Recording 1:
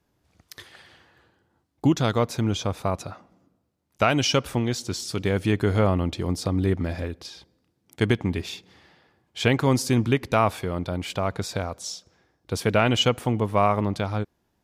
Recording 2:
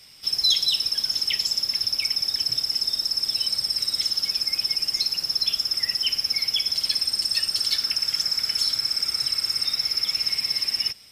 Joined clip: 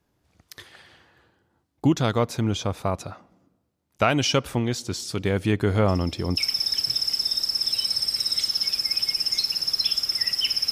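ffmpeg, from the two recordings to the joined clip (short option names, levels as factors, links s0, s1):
-filter_complex "[1:a]asplit=2[s0][s1];[0:a]apad=whole_dur=10.71,atrim=end=10.71,atrim=end=6.372[s2];[s1]atrim=start=1.988:end=6.33[s3];[s0]atrim=start=1.5:end=1.99,asetpts=PTS-STARTPTS,volume=0.126,afade=t=in:d=0.004:c=hsin,afade=t=out:st=0.486:d=0.004:c=hsin,adelay=5880[s4];[s2][s3]acrossfade=d=0.004:c1=hsin:c2=hsin[s5];[s5][s4]amix=inputs=2:normalize=0"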